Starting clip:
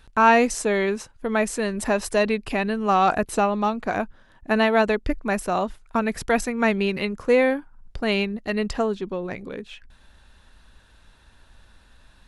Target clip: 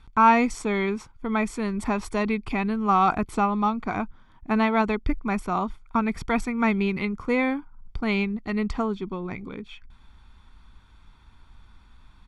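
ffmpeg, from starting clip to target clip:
ffmpeg -i in.wav -af "aemphasis=mode=reproduction:type=50fm,aecho=1:1:0.9:0.66,volume=-2.5dB" out.wav

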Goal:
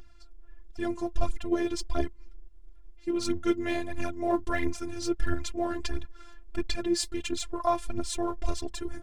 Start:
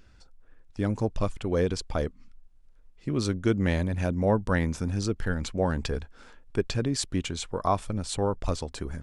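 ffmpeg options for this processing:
ffmpeg -i in.wav -af "aphaser=in_gain=1:out_gain=1:delay=4.6:decay=0.68:speed=1.5:type=triangular,afftfilt=real='hypot(re,im)*cos(PI*b)':imag='0':win_size=512:overlap=0.75" out.wav

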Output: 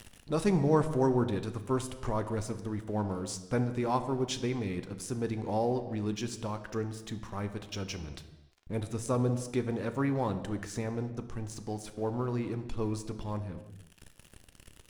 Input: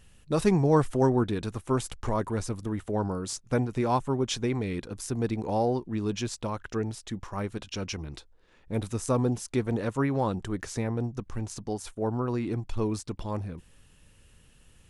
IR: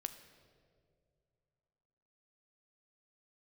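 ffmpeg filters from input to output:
-filter_complex "[0:a]aeval=exprs='sgn(val(0))*max(abs(val(0))-0.00237,0)':channel_layout=same,acompressor=mode=upward:threshold=-32dB:ratio=2.5[link_01];[1:a]atrim=start_sample=2205,afade=type=out:start_time=0.44:duration=0.01,atrim=end_sample=19845,asetrate=48510,aresample=44100[link_02];[link_01][link_02]afir=irnorm=-1:irlink=0"

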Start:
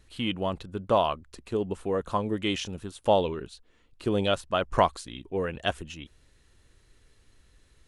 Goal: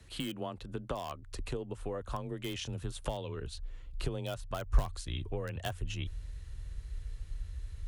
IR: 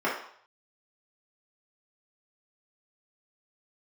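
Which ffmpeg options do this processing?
-filter_complex "[0:a]acrossover=split=310|1400|3200[link_01][link_02][link_03][link_04];[link_02]alimiter=limit=-18dB:level=0:latency=1:release=254[link_05];[link_03]aeval=exprs='(mod(29.9*val(0)+1,2)-1)/29.9':channel_layout=same[link_06];[link_01][link_05][link_06][link_04]amix=inputs=4:normalize=0,acompressor=threshold=-38dB:ratio=6,asubboost=boost=8:cutoff=74,afreqshift=22,volume=3dB"

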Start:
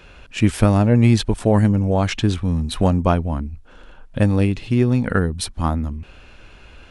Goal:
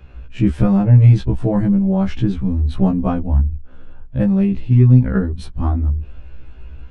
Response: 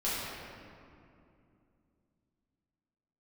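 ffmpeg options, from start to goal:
-af "aemphasis=mode=reproduction:type=riaa,afftfilt=real='re*1.73*eq(mod(b,3),0)':imag='im*1.73*eq(mod(b,3),0)':win_size=2048:overlap=0.75,volume=-3dB"

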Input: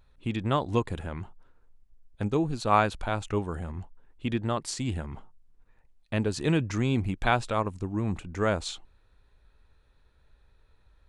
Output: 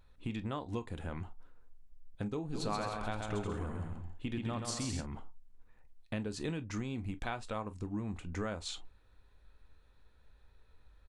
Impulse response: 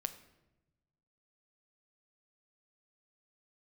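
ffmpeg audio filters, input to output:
-filter_complex "[0:a]acompressor=threshold=-33dB:ratio=6,asplit=3[link_01][link_02][link_03];[link_01]afade=type=out:start_time=2.53:duration=0.02[link_04];[link_02]aecho=1:1:130|214.5|269.4|305.1|328.3:0.631|0.398|0.251|0.158|0.1,afade=type=in:start_time=2.53:duration=0.02,afade=type=out:start_time=5:duration=0.02[link_05];[link_03]afade=type=in:start_time=5:duration=0.02[link_06];[link_04][link_05][link_06]amix=inputs=3:normalize=0[link_07];[1:a]atrim=start_sample=2205,atrim=end_sample=3969,asetrate=74970,aresample=44100[link_08];[link_07][link_08]afir=irnorm=-1:irlink=0,volume=4dB"

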